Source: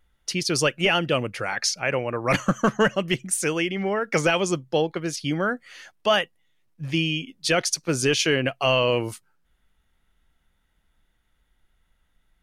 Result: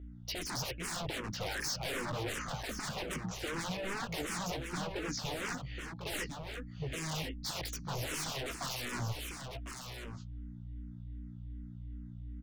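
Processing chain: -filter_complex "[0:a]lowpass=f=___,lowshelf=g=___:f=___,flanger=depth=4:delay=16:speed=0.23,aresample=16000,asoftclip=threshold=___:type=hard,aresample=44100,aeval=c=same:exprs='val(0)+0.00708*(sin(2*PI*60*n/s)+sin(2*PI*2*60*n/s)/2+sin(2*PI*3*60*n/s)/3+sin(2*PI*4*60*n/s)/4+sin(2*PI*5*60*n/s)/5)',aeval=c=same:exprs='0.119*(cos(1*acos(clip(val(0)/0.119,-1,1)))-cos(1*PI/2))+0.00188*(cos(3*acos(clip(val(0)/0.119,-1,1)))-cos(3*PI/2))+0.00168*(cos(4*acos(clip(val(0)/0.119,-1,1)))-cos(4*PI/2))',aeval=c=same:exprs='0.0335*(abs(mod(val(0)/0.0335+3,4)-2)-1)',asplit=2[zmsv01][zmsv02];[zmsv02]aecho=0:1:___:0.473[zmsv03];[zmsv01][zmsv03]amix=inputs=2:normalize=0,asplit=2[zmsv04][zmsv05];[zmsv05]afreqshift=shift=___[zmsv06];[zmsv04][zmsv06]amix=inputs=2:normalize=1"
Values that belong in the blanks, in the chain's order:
5500, 6.5, 190, 0.0708, 1050, -2.6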